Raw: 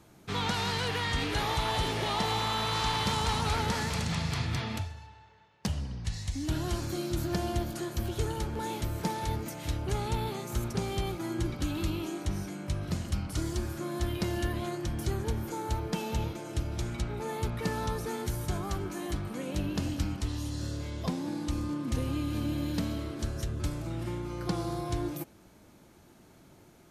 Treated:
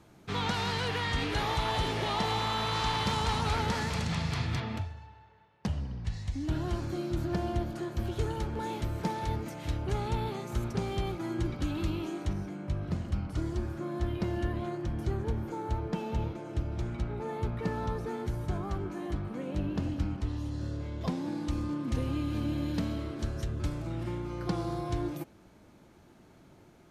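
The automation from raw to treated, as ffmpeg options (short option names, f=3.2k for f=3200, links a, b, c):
-af "asetnsamples=n=441:p=0,asendcmd='4.6 lowpass f 1900;7.99 lowpass f 3200;12.33 lowpass f 1400;21.01 lowpass f 3700',lowpass=f=5k:p=1"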